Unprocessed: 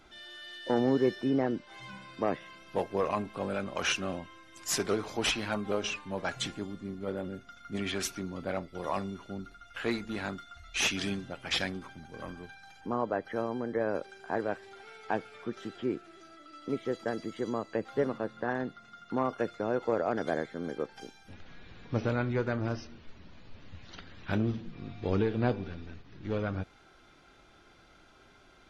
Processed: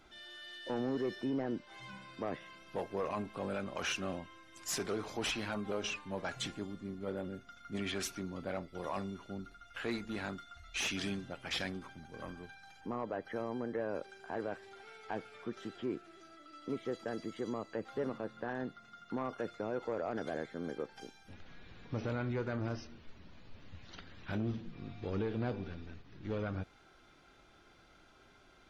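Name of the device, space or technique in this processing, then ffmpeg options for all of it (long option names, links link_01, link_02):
soft clipper into limiter: -af "asoftclip=type=tanh:threshold=-19.5dB,alimiter=level_in=0.5dB:limit=-24dB:level=0:latency=1:release=32,volume=-0.5dB,volume=-3.5dB"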